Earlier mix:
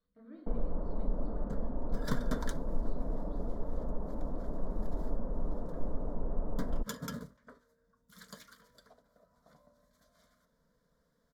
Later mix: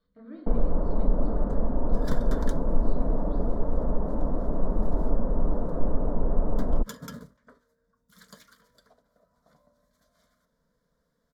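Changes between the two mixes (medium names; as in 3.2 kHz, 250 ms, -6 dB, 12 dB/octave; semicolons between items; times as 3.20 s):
speech +8.0 dB; first sound +10.0 dB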